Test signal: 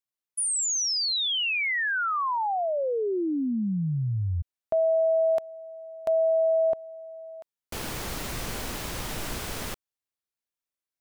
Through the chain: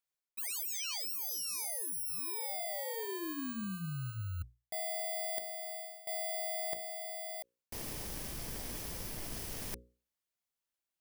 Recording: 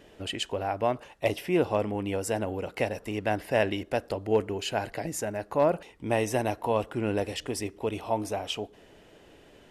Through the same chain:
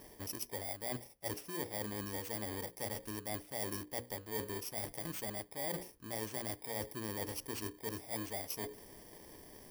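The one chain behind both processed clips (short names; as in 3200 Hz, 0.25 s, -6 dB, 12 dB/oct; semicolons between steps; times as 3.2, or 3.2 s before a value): FFT order left unsorted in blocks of 32 samples; notches 60/120/180/240/300/360/420/480/540 Hz; reverse; compressor 5:1, threshold -39 dBFS; reverse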